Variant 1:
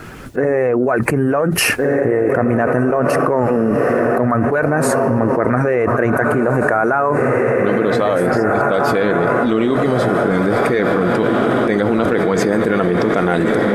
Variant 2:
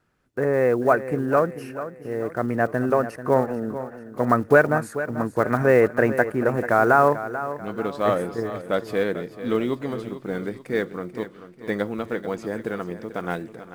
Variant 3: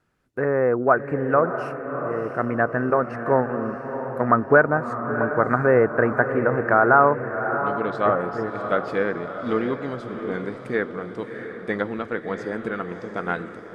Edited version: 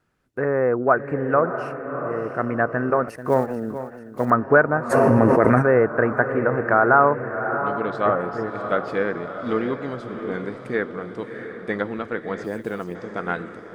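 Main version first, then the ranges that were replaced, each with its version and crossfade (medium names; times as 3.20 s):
3
3.08–4.30 s: from 2
4.92–5.61 s: from 1, crossfade 0.06 s
12.44–12.95 s: from 2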